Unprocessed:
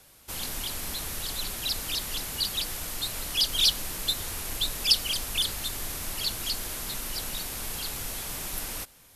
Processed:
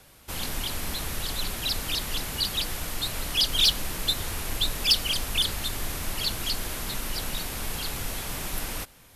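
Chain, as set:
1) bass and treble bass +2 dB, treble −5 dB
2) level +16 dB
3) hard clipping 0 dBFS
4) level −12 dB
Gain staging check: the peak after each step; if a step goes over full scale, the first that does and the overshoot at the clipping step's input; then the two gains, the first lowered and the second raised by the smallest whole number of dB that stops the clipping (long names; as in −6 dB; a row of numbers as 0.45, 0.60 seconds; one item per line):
−10.5, +5.5, 0.0, −12.0 dBFS
step 2, 5.5 dB
step 2 +10 dB, step 4 −6 dB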